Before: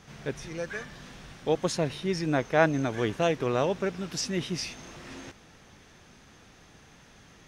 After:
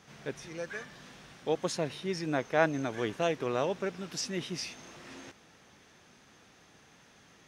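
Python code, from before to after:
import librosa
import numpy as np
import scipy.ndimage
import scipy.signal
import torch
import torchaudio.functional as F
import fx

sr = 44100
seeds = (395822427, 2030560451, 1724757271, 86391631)

y = fx.highpass(x, sr, hz=180.0, slope=6)
y = y * 10.0 ** (-3.5 / 20.0)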